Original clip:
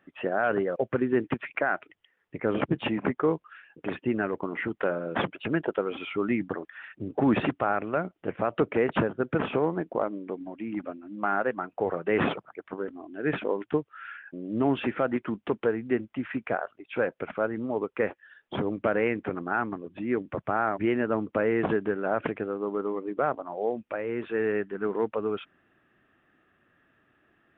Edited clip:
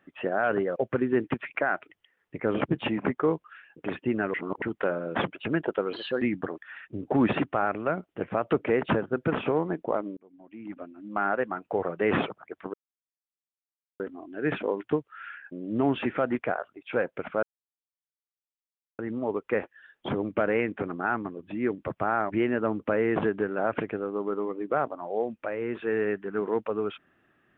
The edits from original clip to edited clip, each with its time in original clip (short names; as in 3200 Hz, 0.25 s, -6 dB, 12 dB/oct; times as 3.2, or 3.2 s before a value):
4.34–4.62 reverse
5.93–6.29 speed 125%
10.24–11.32 fade in
12.81 insert silence 1.26 s
15.2–16.42 cut
17.46 insert silence 1.56 s